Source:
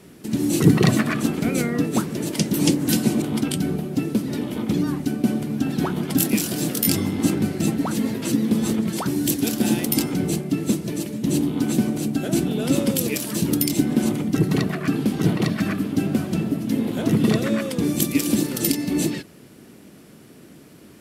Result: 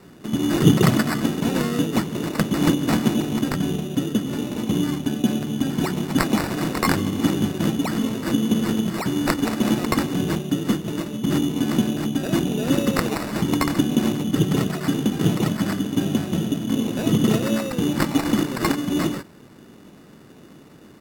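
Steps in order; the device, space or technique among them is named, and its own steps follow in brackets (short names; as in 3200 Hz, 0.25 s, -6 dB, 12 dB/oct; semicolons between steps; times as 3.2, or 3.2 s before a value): crushed at another speed (playback speed 1.25×; sample-and-hold 11×; playback speed 0.8×)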